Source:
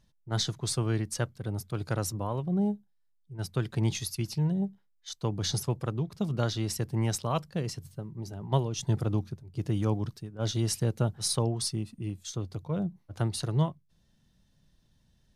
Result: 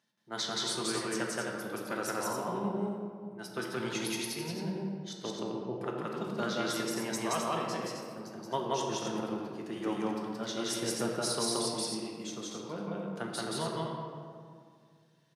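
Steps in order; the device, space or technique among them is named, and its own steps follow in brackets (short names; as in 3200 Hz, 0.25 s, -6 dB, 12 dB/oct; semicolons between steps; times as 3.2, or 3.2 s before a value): 5.25–5.81 steep low-pass 850 Hz 48 dB/oct; stadium PA (HPF 210 Hz 24 dB/oct; bell 1700 Hz +6 dB 1.6 oct; loudspeakers at several distances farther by 60 m 0 dB, 90 m -5 dB; reverb RT60 2.1 s, pre-delay 3 ms, DRR 0.5 dB); gain -6.5 dB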